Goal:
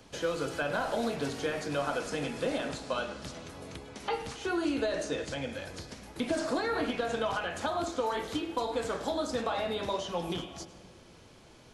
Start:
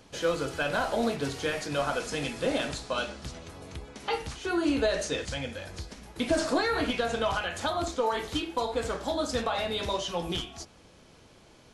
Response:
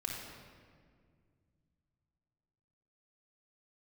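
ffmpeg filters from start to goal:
-filter_complex "[0:a]acrossover=split=120|1700[a][b][c];[a]acompressor=threshold=-54dB:ratio=4[d];[b]acompressor=threshold=-28dB:ratio=4[e];[c]acompressor=threshold=-42dB:ratio=4[f];[d][e][f]amix=inputs=3:normalize=0,asplit=2[g][h];[1:a]atrim=start_sample=2205,adelay=105[i];[h][i]afir=irnorm=-1:irlink=0,volume=-15.5dB[j];[g][j]amix=inputs=2:normalize=0"

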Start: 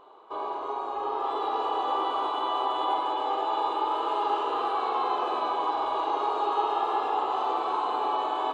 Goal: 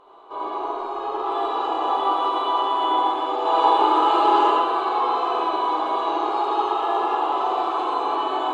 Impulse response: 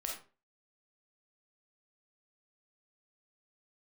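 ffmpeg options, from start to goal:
-filter_complex "[0:a]asettb=1/sr,asplit=3[a][b][c];[a]atrim=end=3.454[d];[b]atrim=start=3.45:end=4.51,asetpts=PTS-STARTPTS,afade=t=in:d=0.004:c=qsin,afade=t=out:st=1.056:d=0.004:c=qsin,acontrast=37[e];[c]atrim=start=4.506[f];[d][e]acrossfade=d=0.004:c1=hsin:c2=qsin[g];[g][f]acrossfade=d=0.004:c1=qsin:c2=hsin[h];[1:a]atrim=start_sample=2205,asetrate=23373,aresample=44100[i];[h][i]afir=irnorm=-1:irlink=0"

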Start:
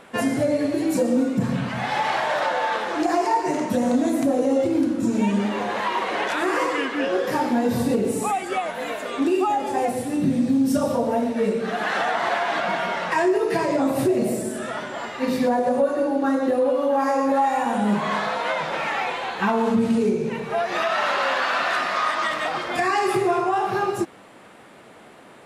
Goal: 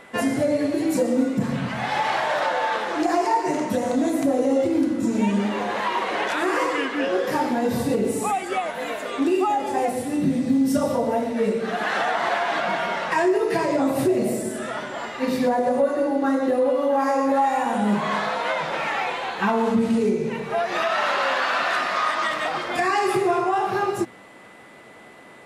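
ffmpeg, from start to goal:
-af "aeval=exprs='val(0)+0.00316*sin(2*PI*2000*n/s)':c=same,bandreject=f=60:t=h:w=6,bandreject=f=120:t=h:w=6,bandreject=f=180:t=h:w=6,bandreject=f=240:t=h:w=6"

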